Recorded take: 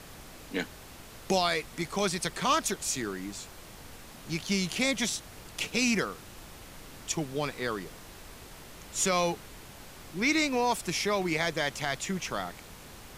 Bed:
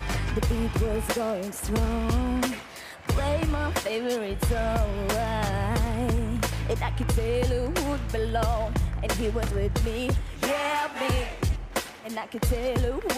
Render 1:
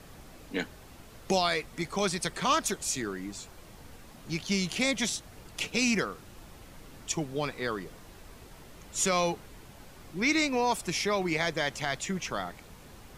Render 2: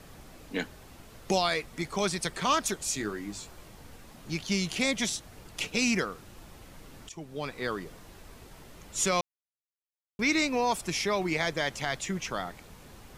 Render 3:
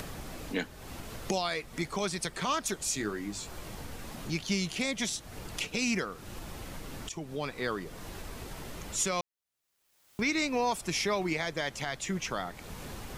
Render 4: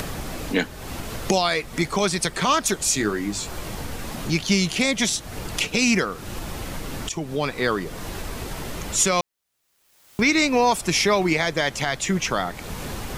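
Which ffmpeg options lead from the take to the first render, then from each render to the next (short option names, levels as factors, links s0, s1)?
-af "afftdn=nr=6:nf=-48"
-filter_complex "[0:a]asettb=1/sr,asplit=3[s0][s1][s2];[s0]atrim=end=2.984[s3];[s1]atrim=start=2.98:end=3.68,asetpts=PTS-STARTPTS,afade=t=in:d=0.004:c=qsin,afade=t=out:st=0.696:d=0.004:c=qsin,asplit=2[s4][s5];[s5]adelay=19,volume=0.473[s6];[s4][s6]amix=inputs=2:normalize=0,atrim=end_sample=30870[s7];[s2]atrim=start=3.676[s8];[s3][s7]acrossfade=d=0.004:c1=hsin:c2=qsin[s9];[s9][s8]acrossfade=d=0.004:c1=qsin:c2=hsin,asplit=4[s10][s11][s12][s13];[s10]atrim=end=7.09,asetpts=PTS-STARTPTS,afade=t=out:st=7.086:d=0.004:c=hsin:silence=0.158489[s14];[s11]atrim=start=7.09:end=9.21,asetpts=PTS-STARTPTS,afade=t=in:d=0.57:silence=0.158489,afade=t=out:st=2.116:d=0.004:c=hsin[s15];[s12]atrim=start=9.21:end=10.19,asetpts=PTS-STARTPTS,volume=0[s16];[s13]atrim=start=10.19,asetpts=PTS-STARTPTS,afade=t=in:d=0.004:c=hsin[s17];[s14][s15][s16][s17]concat=n=4:v=0:a=1"
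-af "alimiter=limit=0.106:level=0:latency=1:release=255,acompressor=mode=upward:threshold=0.0251:ratio=2.5"
-af "volume=3.35"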